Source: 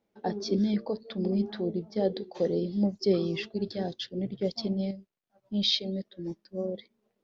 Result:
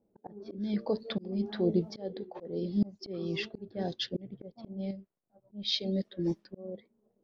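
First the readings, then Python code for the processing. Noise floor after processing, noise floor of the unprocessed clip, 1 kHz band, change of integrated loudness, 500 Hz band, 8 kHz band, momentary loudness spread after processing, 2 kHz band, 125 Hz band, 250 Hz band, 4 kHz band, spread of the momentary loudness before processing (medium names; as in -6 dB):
-77 dBFS, -79 dBFS, -6.0 dB, -4.0 dB, -5.5 dB, no reading, 15 LU, -1.0 dB, -3.0 dB, -4.0 dB, -4.5 dB, 10 LU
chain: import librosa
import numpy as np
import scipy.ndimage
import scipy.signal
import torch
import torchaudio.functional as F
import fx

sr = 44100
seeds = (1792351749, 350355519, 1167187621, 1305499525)

y = fx.auto_swell(x, sr, attack_ms=636.0)
y = fx.env_lowpass(y, sr, base_hz=530.0, full_db=-33.5)
y = F.gain(torch.from_numpy(y), 5.5).numpy()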